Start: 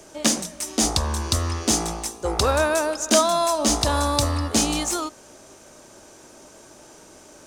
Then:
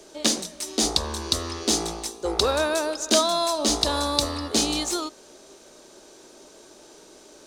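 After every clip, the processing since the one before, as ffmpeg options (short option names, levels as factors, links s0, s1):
-af "equalizer=f=100:t=o:w=0.67:g=-12,equalizer=f=400:t=o:w=0.67:g=7,equalizer=f=4000:t=o:w=0.67:g=9,volume=0.596"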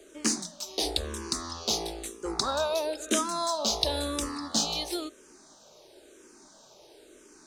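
-filter_complex "[0:a]asplit=2[s0][s1];[s1]afreqshift=-0.99[s2];[s0][s2]amix=inputs=2:normalize=1,volume=0.75"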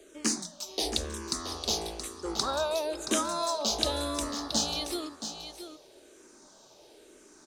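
-af "aecho=1:1:675:0.335,volume=0.841"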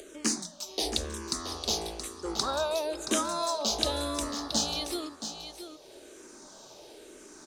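-af "acompressor=mode=upward:threshold=0.00794:ratio=2.5"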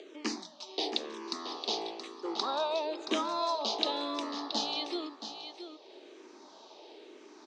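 -af "highpass=f=270:w=0.5412,highpass=f=270:w=1.3066,equalizer=f=560:t=q:w=4:g=-5,equalizer=f=900:t=q:w=4:g=3,equalizer=f=1500:t=q:w=4:g=-8,lowpass=f=4400:w=0.5412,lowpass=f=4400:w=1.3066"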